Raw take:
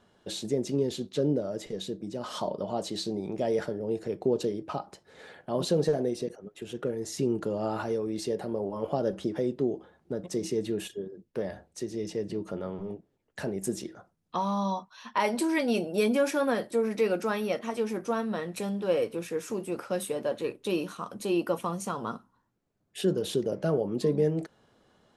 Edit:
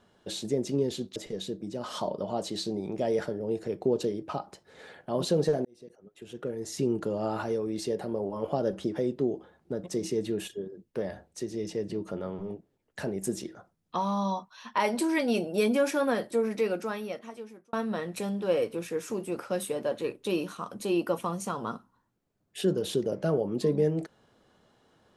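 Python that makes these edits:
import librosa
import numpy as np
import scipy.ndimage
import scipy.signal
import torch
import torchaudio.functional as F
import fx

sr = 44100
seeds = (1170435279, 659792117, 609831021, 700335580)

y = fx.edit(x, sr, fx.cut(start_s=1.16, length_s=0.4),
    fx.fade_in_span(start_s=6.05, length_s=1.17),
    fx.fade_out_span(start_s=16.79, length_s=1.34), tone=tone)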